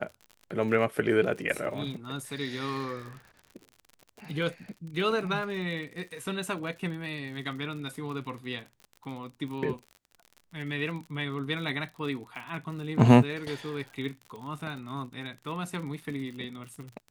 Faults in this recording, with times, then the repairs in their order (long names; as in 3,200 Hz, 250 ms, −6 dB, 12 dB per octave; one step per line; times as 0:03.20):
surface crackle 53 per second −38 dBFS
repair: click removal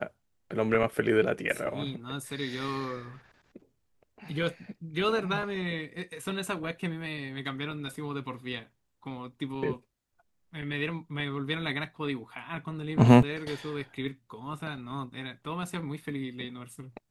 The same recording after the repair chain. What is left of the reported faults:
none of them is left